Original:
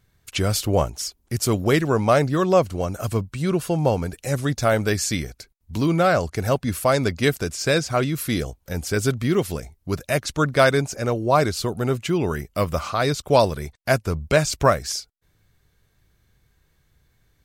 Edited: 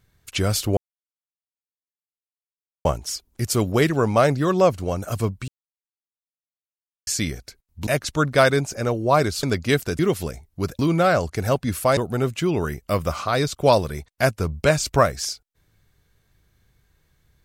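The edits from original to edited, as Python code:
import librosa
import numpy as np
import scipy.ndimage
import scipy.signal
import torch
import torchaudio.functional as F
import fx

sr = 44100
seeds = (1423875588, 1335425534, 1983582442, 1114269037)

y = fx.edit(x, sr, fx.insert_silence(at_s=0.77, length_s=2.08),
    fx.silence(start_s=3.4, length_s=1.59),
    fx.swap(start_s=5.79, length_s=1.18, other_s=10.08, other_length_s=1.56),
    fx.cut(start_s=7.53, length_s=1.75), tone=tone)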